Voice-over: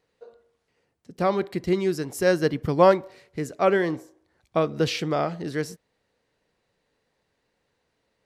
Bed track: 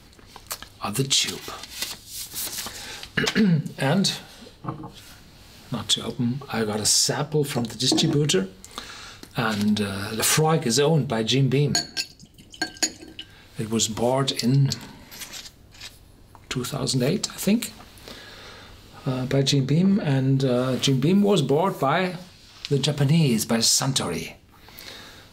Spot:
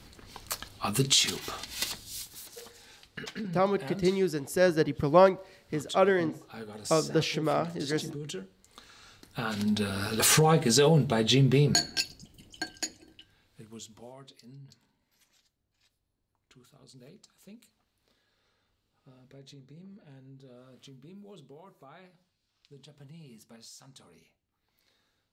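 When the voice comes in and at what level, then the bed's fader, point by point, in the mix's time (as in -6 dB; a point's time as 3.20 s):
2.35 s, -3.0 dB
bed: 2.12 s -2.5 dB
2.44 s -17.5 dB
8.69 s -17.5 dB
10.06 s -2 dB
12.11 s -2 dB
14.43 s -30.5 dB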